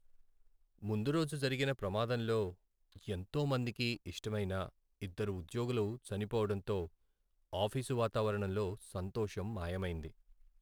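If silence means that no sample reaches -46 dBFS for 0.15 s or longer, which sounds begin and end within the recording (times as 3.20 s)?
0.82–2.52 s
2.96–4.69 s
5.02–6.87 s
7.53–10.09 s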